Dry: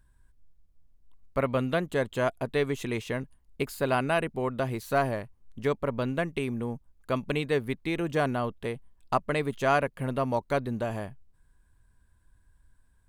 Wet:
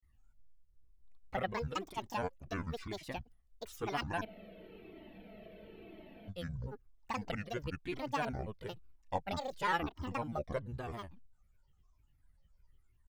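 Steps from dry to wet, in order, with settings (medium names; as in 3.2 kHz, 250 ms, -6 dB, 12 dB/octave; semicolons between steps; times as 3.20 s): granulator 100 ms, grains 20 per s, spray 38 ms, pitch spread up and down by 12 st; spectral freeze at 4.27 s, 2.02 s; Shepard-style flanger falling 1 Hz; trim -4 dB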